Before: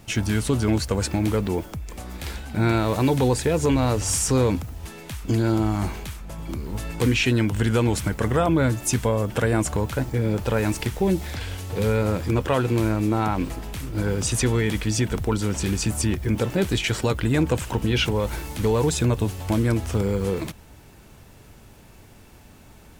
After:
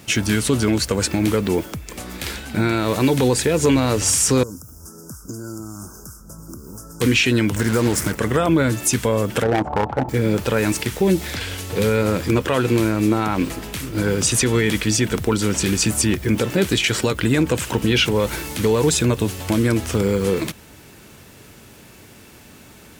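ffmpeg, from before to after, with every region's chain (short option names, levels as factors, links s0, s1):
-filter_complex "[0:a]asettb=1/sr,asplit=3[s0][s1][s2];[s0]atrim=end=4.434[s3];[s1]atrim=start=4.43:end=7.01,asetpts=PTS-STARTPTS,afade=t=in:d=0.004:c=qsin,afade=t=out:st=2.576:d=0.004:c=qsin,asuperstop=centerf=2800:order=20:qfactor=0.78,equalizer=f=810:w=0.76:g=-12.5,acrossover=split=520|2700[s4][s5][s6];[s4]acompressor=threshold=0.0126:ratio=4[s7];[s5]acompressor=threshold=0.00447:ratio=4[s8];[s6]acompressor=threshold=0.00447:ratio=4[s9];[s7][s8][s9]amix=inputs=3:normalize=0[s10];[s2]atrim=start=7.006[s11];[s3][s10]acrossfade=d=0.004:c1=hsin:c2=qsin[s12];[s12][s11]acrossfade=d=0.004:c1=qsin:c2=hsin,asettb=1/sr,asplit=3[s13][s14][s15];[s13]atrim=end=7.564[s16];[s14]atrim=start=7.56:end=8.15,asetpts=PTS-STARTPTS,afade=t=in:d=0.004:c=qsin,afade=t=out:st=0.586:d=0.004:c=qsin,asuperstop=centerf=3300:order=8:qfactor=1.2,acrusher=bits=4:mix=0:aa=0.5[s17];[s15]atrim=start=8.146[s18];[s16][s17]acrossfade=d=0.004:c1=hsin:c2=qsin[s19];[s19][s18]acrossfade=d=0.004:c1=qsin:c2=hsin,asettb=1/sr,asplit=3[s20][s21][s22];[s20]atrim=end=9.434[s23];[s21]atrim=start=9.43:end=10.09,asetpts=PTS-STARTPTS,afade=t=in:d=0.004:c=qsin,afade=t=out:st=0.656:d=0.004:c=qsin,lowpass=f=820:t=q:w=8.4,tremolo=f=32:d=0.462,asoftclip=type=hard:threshold=0.141[s24];[s22]atrim=start=10.086[s25];[s23][s24]acrossfade=d=0.004:c1=hsin:c2=qsin[s26];[s26][s25]acrossfade=d=0.004:c1=qsin:c2=hsin,highpass=f=220:p=1,equalizer=f=800:t=o:w=1:g=-6,alimiter=limit=0.158:level=0:latency=1:release=104,volume=2.66"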